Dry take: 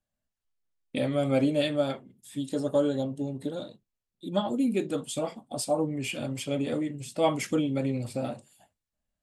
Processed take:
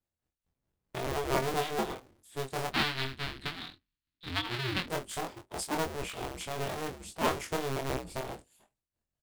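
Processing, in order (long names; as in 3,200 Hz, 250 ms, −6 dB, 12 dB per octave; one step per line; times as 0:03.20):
sub-harmonics by changed cycles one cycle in 2, inverted
0:02.72–0:04.88: drawn EQ curve 300 Hz 0 dB, 500 Hz −14 dB, 1,600 Hz +5 dB, 4,200 Hz +10 dB, 6,200 Hz −7 dB
shaped tremolo triangle 4.7 Hz, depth 60%
double-tracking delay 23 ms −4 dB
level −4 dB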